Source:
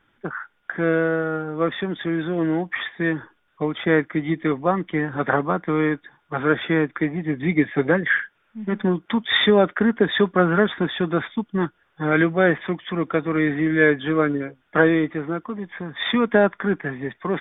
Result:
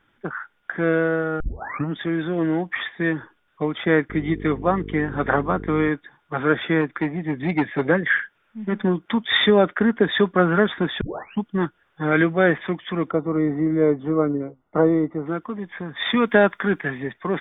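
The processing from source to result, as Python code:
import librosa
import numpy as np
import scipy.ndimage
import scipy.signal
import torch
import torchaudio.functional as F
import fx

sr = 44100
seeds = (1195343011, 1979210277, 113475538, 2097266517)

y = fx.dmg_buzz(x, sr, base_hz=50.0, harmonics=9, level_db=-34.0, tilt_db=-2, odd_only=False, at=(4.09, 5.88), fade=0.02)
y = fx.transformer_sat(y, sr, knee_hz=630.0, at=(6.81, 7.82))
y = fx.savgol(y, sr, points=65, at=(13.11, 15.26))
y = fx.high_shelf(y, sr, hz=2600.0, db=11.0, at=(16.17, 17.03))
y = fx.edit(y, sr, fx.tape_start(start_s=1.4, length_s=0.56),
    fx.tape_start(start_s=11.01, length_s=0.41), tone=tone)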